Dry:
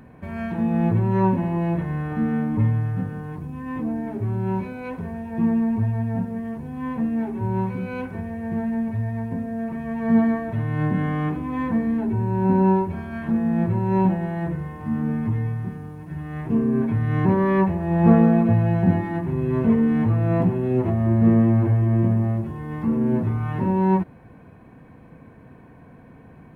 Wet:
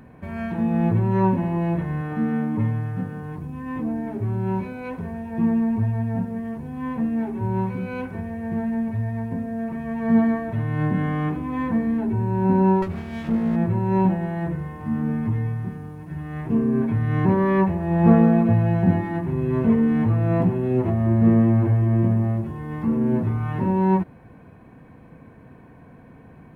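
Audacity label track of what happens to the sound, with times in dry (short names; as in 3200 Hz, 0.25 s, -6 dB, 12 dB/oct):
2.010000	3.230000	HPF 120 Hz
12.820000	13.560000	minimum comb delay 0.39 ms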